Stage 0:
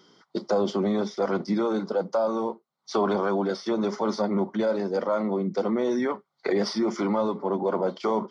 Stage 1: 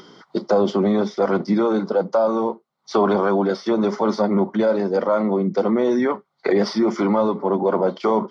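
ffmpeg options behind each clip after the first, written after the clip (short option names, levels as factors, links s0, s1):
-af "lowpass=f=3500:p=1,acompressor=mode=upward:threshold=0.00562:ratio=2.5,volume=2.11"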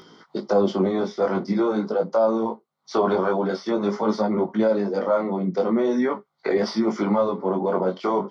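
-af "flanger=delay=18:depth=4:speed=0.45"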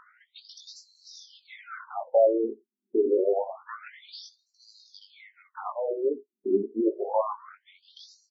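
-filter_complex "[0:a]crystalizer=i=1:c=0,acrossover=split=5500[s0][s1];[s1]adelay=80[s2];[s0][s2]amix=inputs=2:normalize=0,afftfilt=real='re*between(b*sr/1024,290*pow(5700/290,0.5+0.5*sin(2*PI*0.27*pts/sr))/1.41,290*pow(5700/290,0.5+0.5*sin(2*PI*0.27*pts/sr))*1.41)':imag='im*between(b*sr/1024,290*pow(5700/290,0.5+0.5*sin(2*PI*0.27*pts/sr))/1.41,290*pow(5700/290,0.5+0.5*sin(2*PI*0.27*pts/sr))*1.41)':win_size=1024:overlap=0.75"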